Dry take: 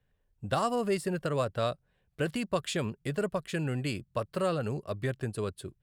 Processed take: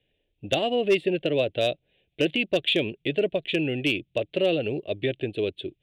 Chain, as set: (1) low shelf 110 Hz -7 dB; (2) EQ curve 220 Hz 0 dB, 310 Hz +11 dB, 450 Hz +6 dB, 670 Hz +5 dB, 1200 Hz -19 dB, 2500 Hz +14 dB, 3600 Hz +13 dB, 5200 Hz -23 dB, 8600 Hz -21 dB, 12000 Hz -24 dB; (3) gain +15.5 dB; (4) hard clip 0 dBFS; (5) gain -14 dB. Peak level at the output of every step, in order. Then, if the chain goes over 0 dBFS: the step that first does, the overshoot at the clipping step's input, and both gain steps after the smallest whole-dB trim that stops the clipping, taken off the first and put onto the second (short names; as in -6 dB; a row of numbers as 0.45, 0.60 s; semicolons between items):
-16.5, -9.5, +6.0, 0.0, -14.0 dBFS; step 3, 6.0 dB; step 3 +9.5 dB, step 5 -8 dB